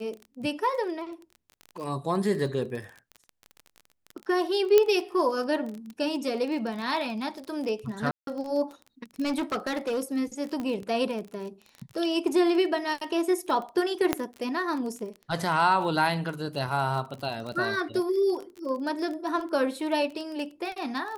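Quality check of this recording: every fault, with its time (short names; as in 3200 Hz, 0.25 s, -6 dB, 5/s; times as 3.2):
crackle 25/s -33 dBFS
4.78 pop -7 dBFS
8.11–8.27 gap 0.162 s
9.23–9.99 clipped -24.5 dBFS
10.6 pop -21 dBFS
14.13 pop -8 dBFS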